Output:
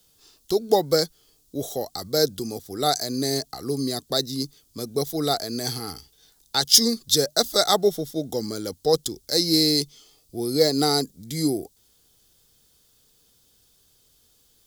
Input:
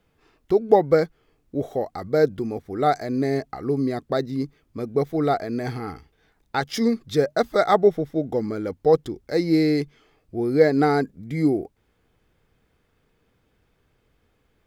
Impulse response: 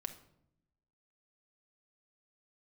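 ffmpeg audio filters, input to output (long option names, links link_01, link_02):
-filter_complex "[0:a]asettb=1/sr,asplit=3[link_01][link_02][link_03];[link_01]atrim=end=9.594[link_04];[link_02]atrim=start=9.59:end=11.19,asetpts=PTS-STARTPTS,afade=type=in:duration=0.004:curve=qsin,afade=type=out:start_time=1.596:duration=0.004:curve=qsin,bandreject=frequency=1600:width=5.7[link_05];[link_03]atrim=start=11.186[link_06];[link_04][link_05]acrossfade=duration=0.004:curve1=hsin:curve2=qsin[link_07];[link_07][link_06]acrossfade=duration=0.004:curve1=qsin:curve2=hsin,acrossover=split=130|810[link_08][link_09][link_10];[link_10]aexciter=amount=12.4:drive=5.1:freq=3400[link_11];[link_08][link_09][link_11]amix=inputs=3:normalize=0,volume=-3.5dB"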